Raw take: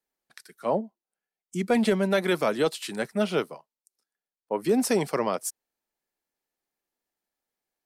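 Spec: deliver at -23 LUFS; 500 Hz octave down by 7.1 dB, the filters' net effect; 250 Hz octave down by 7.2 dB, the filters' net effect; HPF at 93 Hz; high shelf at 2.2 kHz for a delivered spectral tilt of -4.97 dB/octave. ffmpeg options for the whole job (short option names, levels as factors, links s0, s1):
-af "highpass=93,equalizer=f=250:t=o:g=-7.5,equalizer=f=500:t=o:g=-6,highshelf=f=2200:g=-9,volume=3.16"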